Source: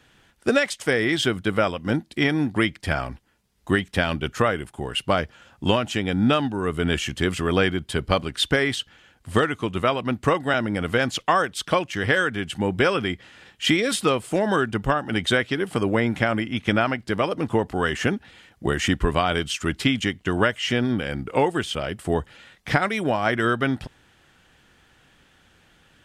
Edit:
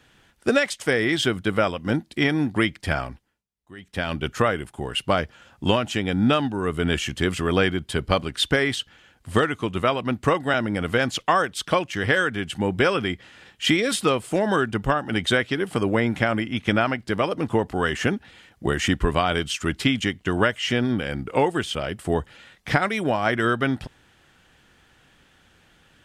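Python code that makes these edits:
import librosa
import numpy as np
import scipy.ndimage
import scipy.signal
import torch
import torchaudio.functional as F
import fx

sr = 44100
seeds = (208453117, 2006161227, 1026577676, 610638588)

y = fx.edit(x, sr, fx.fade_down_up(start_s=2.97, length_s=1.26, db=-23.5, fade_s=0.48), tone=tone)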